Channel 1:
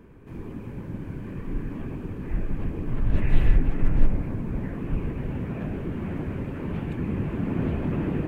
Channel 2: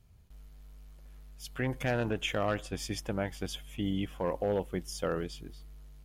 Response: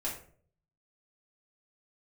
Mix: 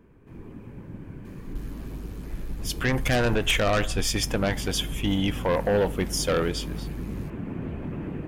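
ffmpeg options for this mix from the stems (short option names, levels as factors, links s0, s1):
-filter_complex "[0:a]acompressor=threshold=0.0794:ratio=6,volume=0.531[s0];[1:a]equalizer=f=220:w=0.47:g=-5.5,aeval=exprs='0.1*sin(PI/2*2.51*val(0)/0.1)':c=same,adelay=1250,volume=1.19,asplit=2[s1][s2];[s2]volume=0.112[s3];[2:a]atrim=start_sample=2205[s4];[s3][s4]afir=irnorm=-1:irlink=0[s5];[s0][s1][s5]amix=inputs=3:normalize=0"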